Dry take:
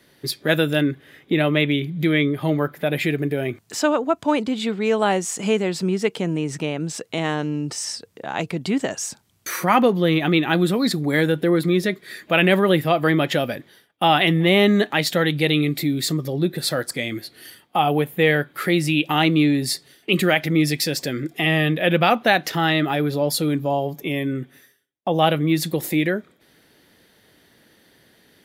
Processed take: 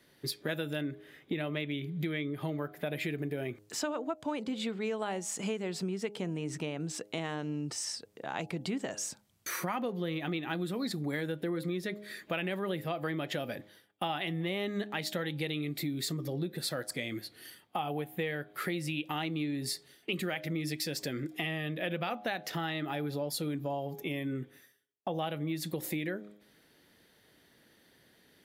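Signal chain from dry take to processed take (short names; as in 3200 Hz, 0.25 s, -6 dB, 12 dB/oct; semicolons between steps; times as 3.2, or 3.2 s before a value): de-hum 103.6 Hz, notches 8; compressor, threshold -23 dBFS, peak gain reduction 11.5 dB; gain -8 dB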